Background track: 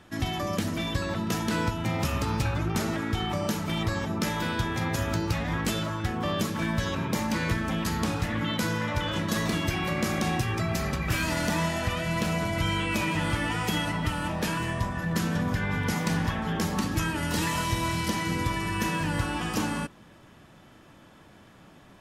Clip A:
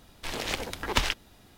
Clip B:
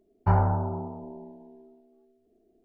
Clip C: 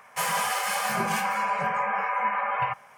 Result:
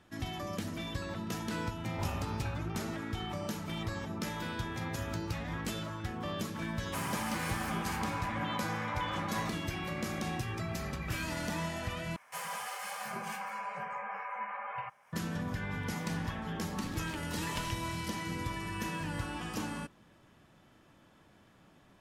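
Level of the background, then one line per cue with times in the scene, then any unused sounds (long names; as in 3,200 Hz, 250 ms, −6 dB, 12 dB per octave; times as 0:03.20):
background track −9 dB
0:01.71: mix in B −17 dB
0:06.76: mix in C −12 dB
0:12.16: overwrite with C −13 dB + one half of a high-frequency compander encoder only
0:16.60: mix in A −16.5 dB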